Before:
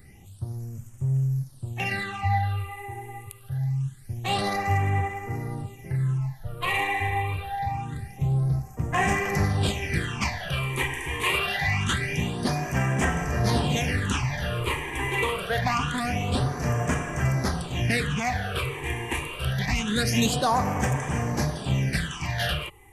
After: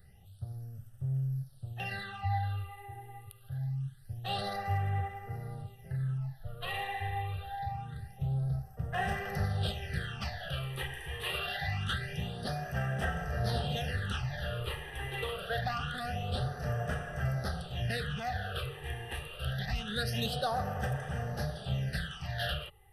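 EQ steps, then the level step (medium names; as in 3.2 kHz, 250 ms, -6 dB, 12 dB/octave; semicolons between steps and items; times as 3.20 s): static phaser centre 1.5 kHz, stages 8; -6.0 dB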